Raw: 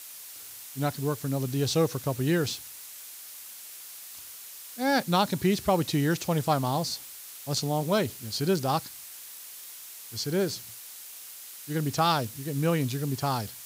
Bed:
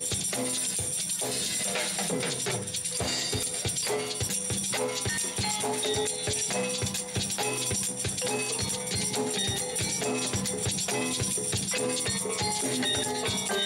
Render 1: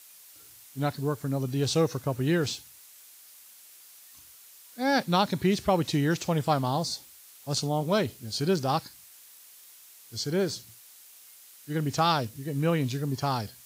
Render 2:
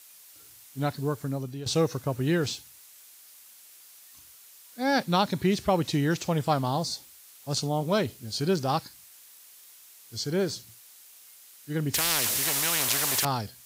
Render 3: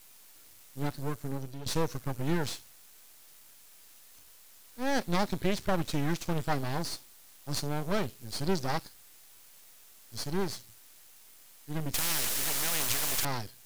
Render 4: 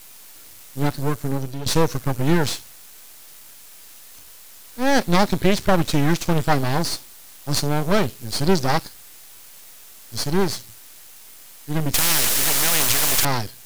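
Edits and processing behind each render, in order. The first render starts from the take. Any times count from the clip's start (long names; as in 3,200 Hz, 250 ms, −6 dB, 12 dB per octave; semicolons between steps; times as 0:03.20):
noise reduction from a noise print 8 dB
0:01.22–0:01.66: fade out, to −13.5 dB; 0:11.94–0:13.25: every bin compressed towards the loudest bin 10 to 1
half-wave rectification
level +11.5 dB; brickwall limiter −2 dBFS, peak gain reduction 2 dB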